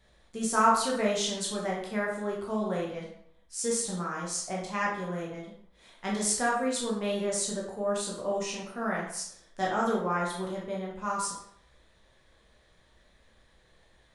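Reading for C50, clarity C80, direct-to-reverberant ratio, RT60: 3.0 dB, 7.0 dB, -4.5 dB, 0.70 s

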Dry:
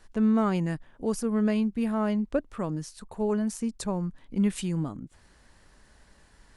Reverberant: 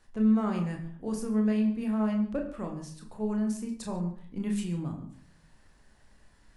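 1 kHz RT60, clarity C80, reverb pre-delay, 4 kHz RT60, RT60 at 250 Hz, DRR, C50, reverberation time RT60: 0.55 s, 10.5 dB, 28 ms, 0.40 s, 0.70 s, 1.5 dB, 9.0 dB, 0.55 s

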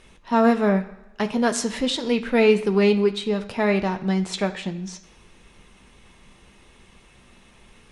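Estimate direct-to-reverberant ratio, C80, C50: 5.0 dB, 16.0 dB, 13.5 dB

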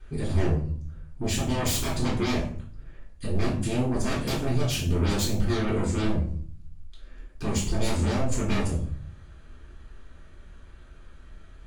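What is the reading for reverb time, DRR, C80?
0.50 s, -9.0 dB, 10.5 dB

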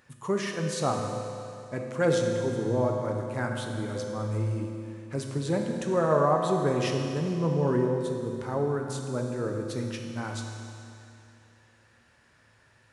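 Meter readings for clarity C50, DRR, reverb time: 3.0 dB, 1.5 dB, 2.7 s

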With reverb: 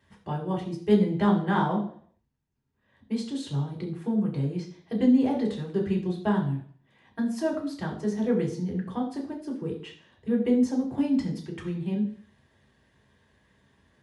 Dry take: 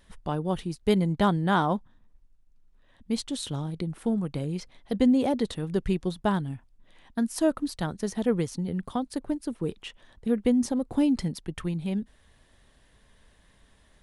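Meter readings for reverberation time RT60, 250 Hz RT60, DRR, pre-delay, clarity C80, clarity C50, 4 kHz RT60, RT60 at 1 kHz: 0.55 s, 0.50 s, -3.0 dB, 3 ms, 12.5 dB, 9.0 dB, 0.55 s, 0.55 s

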